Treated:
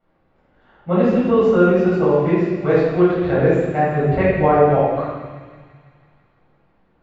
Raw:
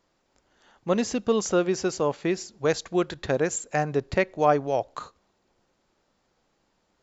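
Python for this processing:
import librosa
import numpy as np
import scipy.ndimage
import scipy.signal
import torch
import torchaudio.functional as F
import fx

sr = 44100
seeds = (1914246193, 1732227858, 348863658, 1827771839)

p1 = fx.air_absorb(x, sr, metres=500.0)
p2 = p1 + fx.echo_wet_highpass(p1, sr, ms=166, feedback_pct=70, hz=2200.0, wet_db=-9.0, dry=0)
p3 = fx.room_shoebox(p2, sr, seeds[0], volume_m3=830.0, walls='mixed', distance_m=7.1)
y = p3 * librosa.db_to_amplitude(-3.5)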